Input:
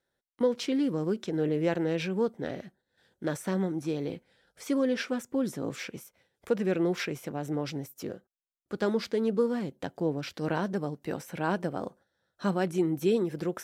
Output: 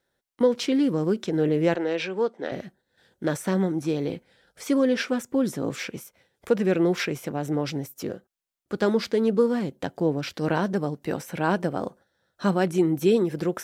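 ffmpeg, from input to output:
-filter_complex "[0:a]asettb=1/sr,asplit=3[s0][s1][s2];[s0]atrim=end=1.754[s3];[s1]atrim=start=1.75:end=2.52,asetpts=PTS-STARTPTS,afade=t=in:d=0.004:c=qsin,afade=t=out:st=0.766:d=0.004:c=qsin,highpass=370,lowpass=5800[s4];[s2]atrim=start=2.516[s5];[s3][s4]acrossfade=d=0.004:c1=hsin:c2=qsin[s6];[s6][s5]acrossfade=d=0.004:c1=qsin:c2=hsin,volume=1.88"

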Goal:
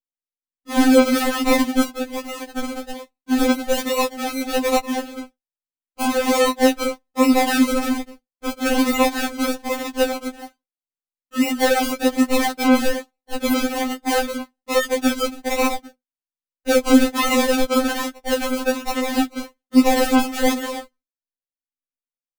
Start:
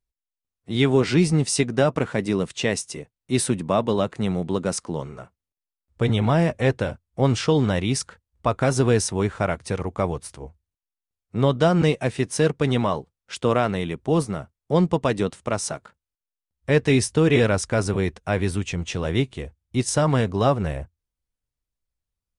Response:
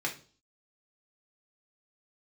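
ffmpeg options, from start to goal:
-filter_complex "[0:a]agate=range=0.0224:threshold=0.00562:ratio=3:detection=peak,highshelf=f=2100:g=10.5,asettb=1/sr,asplit=3[s0][s1][s2];[s0]atrim=end=7.854[s3];[s1]atrim=start=7.85:end=8.66,asetpts=PTS-STARTPTS,afade=t=in:d=0.004:c=qsin,afade=t=out:st=0.806:d=0.004:c=qsin,acrossover=split=1100|2900[s4][s5][s6];[s4]acompressor=threshold=0.0562:ratio=4[s7];[s5]acompressor=threshold=0.0126:ratio=4[s8];[s6]acompressor=threshold=0.0251:ratio=4[s9];[s7][s8][s9]amix=inputs=3:normalize=0[s10];[s2]atrim=start=8.656[s11];[s3][s10]acrossfade=d=0.004:c1=hsin:c2=qsin[s12];[s12][s11]acrossfade=d=0.004:c1=qsin:c2=hsin,acrusher=samples=38:mix=1:aa=0.000001:lfo=1:lforange=22.8:lforate=1.2,asettb=1/sr,asplit=3[s13][s14][s15];[s13]atrim=end=1.834[s16];[s14]atrim=start=1.83:end=3.38,asetpts=PTS-STARTPTS,afade=t=in:d=0.004:c=qsin,afade=t=out:st=1.546:d=0.004:c=qsin,acompressor=threshold=0.0447:ratio=4[s17];[s15]atrim=start=3.376[s18];[s16][s17]acrossfade=d=0.004:c1=hsin:c2=qsin[s19];[s19][s18]acrossfade=d=0.004:c1=qsin:c2=hsin,asplit=2[s20][s21];[1:a]atrim=start_sample=2205,afade=t=out:st=0.26:d=0.01,atrim=end_sample=11907,asetrate=74970,aresample=44100[s22];[s21][s22]afir=irnorm=-1:irlink=0,volume=0.0531[s23];[s20][s23]amix=inputs=2:normalize=0,alimiter=level_in=3.35:limit=0.891:release=50:level=0:latency=1,afftfilt=real='re*3.46*eq(mod(b,12),0)':imag='im*3.46*eq(mod(b,12),0)':win_size=2048:overlap=0.75,volume=0.596"

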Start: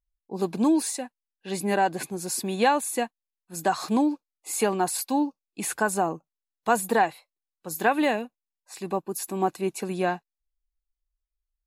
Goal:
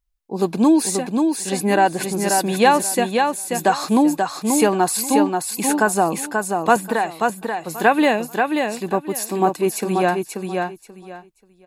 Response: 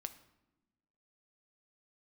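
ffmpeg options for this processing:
-filter_complex "[0:a]asettb=1/sr,asplit=3[s0][s1][s2];[s0]atrim=end=6.764[s3];[s1]atrim=start=6.76:end=7.78,asetpts=PTS-STARTPTS,afade=t=in:d=0.004:c=qsin,afade=t=out:st=1.016:d=0.004:c=qsin,acrossover=split=810|3300[s4][s5][s6];[s4]acompressor=threshold=0.0398:ratio=4[s7];[s5]acompressor=threshold=0.0282:ratio=4[s8];[s6]acompressor=threshold=0.00794:ratio=4[s9];[s7][s8][s9]amix=inputs=3:normalize=0[s10];[s2]atrim=start=7.776[s11];[s3][s10]acrossfade=d=0.004:c1=hsin:c2=qsin[s12];[s12][s11]acrossfade=d=0.004:c1=qsin:c2=hsin,aecho=1:1:534|1068|1602:0.596|0.125|0.0263,volume=2.24"

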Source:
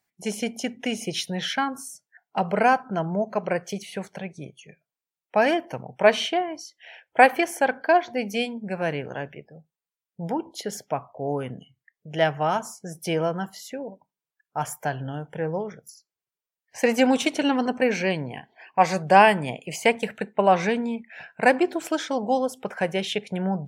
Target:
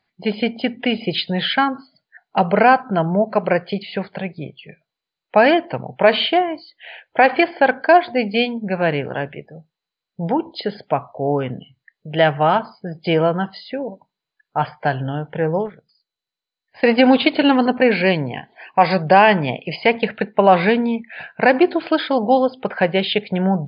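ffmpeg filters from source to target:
-filter_complex "[0:a]asplit=3[s0][s1][s2];[s0]afade=t=out:st=15.65:d=0.02[s3];[s1]aeval=exprs='0.0708*(cos(1*acos(clip(val(0)/0.0708,-1,1)))-cos(1*PI/2))+0.0158*(cos(3*acos(clip(val(0)/0.0708,-1,1)))-cos(3*PI/2))':c=same,afade=t=in:st=15.65:d=0.02,afade=t=out:st=16.82:d=0.02[s4];[s2]afade=t=in:st=16.82:d=0.02[s5];[s3][s4][s5]amix=inputs=3:normalize=0,alimiter=level_in=2.82:limit=0.891:release=50:level=0:latency=1,volume=0.891" -ar 16000 -c:a mp2 -b:a 64k

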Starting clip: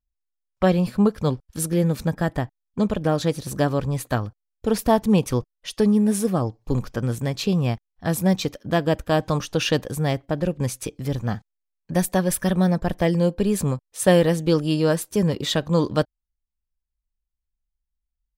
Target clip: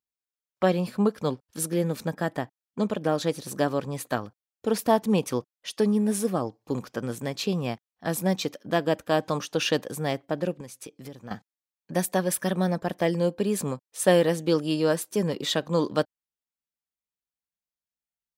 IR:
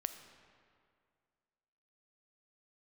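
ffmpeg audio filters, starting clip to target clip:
-filter_complex "[0:a]highpass=210,asettb=1/sr,asplit=3[s0][s1][s2];[s0]atrim=end=10.594[s3];[s1]atrim=start=10.59:end=11.31,asetpts=PTS-STARTPTS,afade=t=in:d=0.004:c=qsin,afade=t=out:st=0.716:d=0.004:c=qsin,acompressor=threshold=0.0158:ratio=6[s4];[s2]atrim=start=11.306[s5];[s3][s4]acrossfade=d=0.004:c1=hsin:c2=qsin[s6];[s6][s5]acrossfade=d=0.004:c1=qsin:c2=hsin,volume=0.75"

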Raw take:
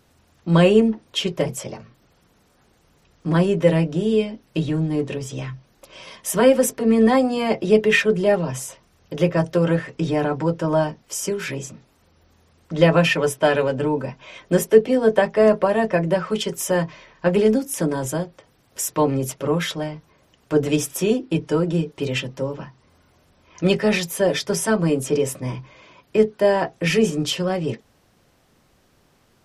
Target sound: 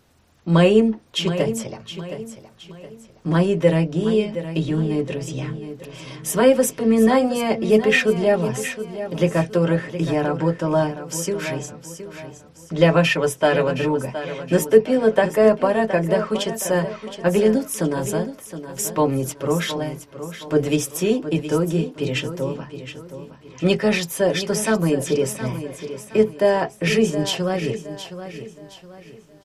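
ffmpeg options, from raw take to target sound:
-af "aecho=1:1:718|1436|2154|2872:0.266|0.0984|0.0364|0.0135"

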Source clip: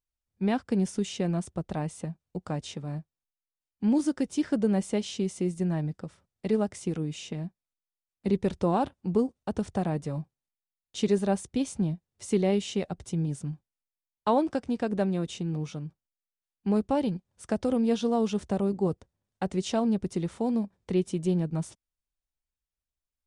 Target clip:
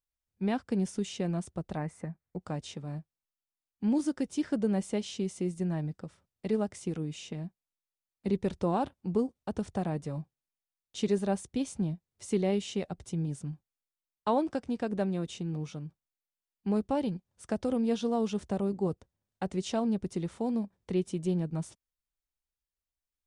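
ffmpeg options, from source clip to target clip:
-filter_complex "[0:a]asettb=1/sr,asplit=3[s0][s1][s2];[s0]atrim=end=1.774[s3];[s1]atrim=start=1.77:end=2.41,asetpts=PTS-STARTPTS,afade=t=in:d=0.004:c=qsin,afade=t=out:st=0.636:d=0.004:c=qsin,highshelf=f=2500:t=q:w=3:g=-6.5[s4];[s2]atrim=start=2.406[s5];[s3][s4]acrossfade=d=0.004:c1=hsin:c2=qsin[s6];[s6][s5]acrossfade=d=0.004:c1=qsin:c2=hsin,volume=0.668"

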